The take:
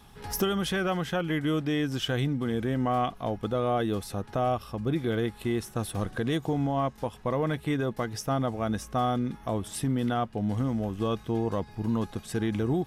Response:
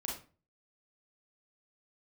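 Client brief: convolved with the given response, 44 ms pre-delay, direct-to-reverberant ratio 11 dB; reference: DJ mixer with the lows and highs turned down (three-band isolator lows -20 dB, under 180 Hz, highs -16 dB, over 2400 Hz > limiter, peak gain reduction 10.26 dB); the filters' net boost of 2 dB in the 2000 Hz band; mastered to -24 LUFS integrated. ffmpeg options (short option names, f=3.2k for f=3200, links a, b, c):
-filter_complex "[0:a]equalizer=f=2k:t=o:g=5,asplit=2[a][b];[1:a]atrim=start_sample=2205,adelay=44[c];[b][c]afir=irnorm=-1:irlink=0,volume=-12dB[d];[a][d]amix=inputs=2:normalize=0,acrossover=split=180 2400:gain=0.1 1 0.158[e][f][g];[e][f][g]amix=inputs=3:normalize=0,volume=11.5dB,alimiter=limit=-14dB:level=0:latency=1"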